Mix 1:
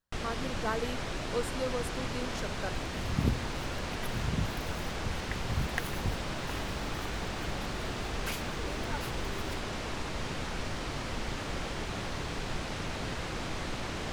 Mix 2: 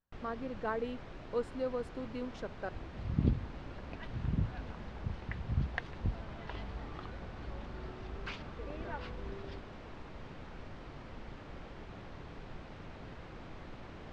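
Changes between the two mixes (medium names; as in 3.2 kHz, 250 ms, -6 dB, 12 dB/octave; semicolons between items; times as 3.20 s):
first sound -10.5 dB; second sound: add resonant low-pass 4.5 kHz, resonance Q 1.5; master: add tape spacing loss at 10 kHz 25 dB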